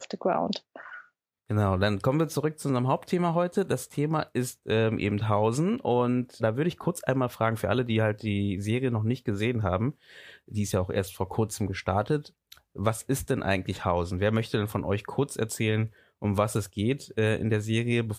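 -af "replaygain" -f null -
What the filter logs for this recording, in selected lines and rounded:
track_gain = +9.0 dB
track_peak = 0.273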